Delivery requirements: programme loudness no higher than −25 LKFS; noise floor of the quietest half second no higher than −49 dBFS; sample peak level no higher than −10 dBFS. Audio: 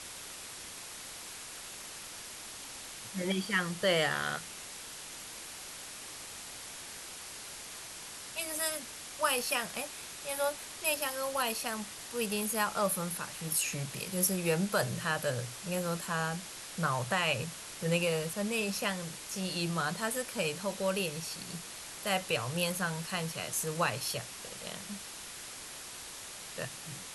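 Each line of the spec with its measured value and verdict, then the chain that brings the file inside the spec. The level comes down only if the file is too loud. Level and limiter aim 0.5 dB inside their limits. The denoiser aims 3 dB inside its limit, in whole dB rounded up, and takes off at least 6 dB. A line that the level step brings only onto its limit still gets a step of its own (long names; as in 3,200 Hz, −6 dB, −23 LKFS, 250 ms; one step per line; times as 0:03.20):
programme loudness −34.5 LKFS: in spec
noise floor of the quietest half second −46 dBFS: out of spec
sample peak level −14.0 dBFS: in spec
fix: broadband denoise 6 dB, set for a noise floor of −46 dBFS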